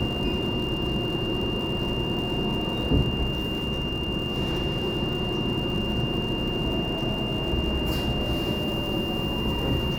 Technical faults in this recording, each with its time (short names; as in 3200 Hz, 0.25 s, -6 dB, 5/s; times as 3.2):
crackle 160/s -34 dBFS
tone 2800 Hz -31 dBFS